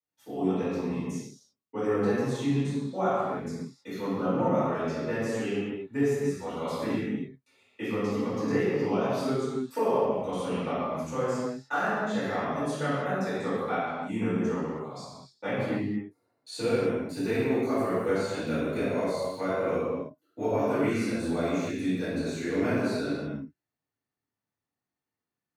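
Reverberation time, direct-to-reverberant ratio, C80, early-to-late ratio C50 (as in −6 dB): non-exponential decay, −17.0 dB, −1.5 dB, −4.0 dB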